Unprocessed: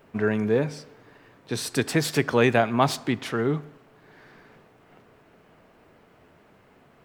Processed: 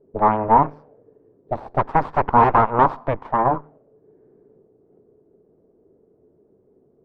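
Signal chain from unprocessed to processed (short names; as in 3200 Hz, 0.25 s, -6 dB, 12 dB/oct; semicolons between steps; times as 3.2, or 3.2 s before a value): added harmonics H 3 -18 dB, 4 -13 dB, 8 -10 dB, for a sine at -5.5 dBFS; envelope low-pass 400–1000 Hz up, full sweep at -22.5 dBFS; gain -2 dB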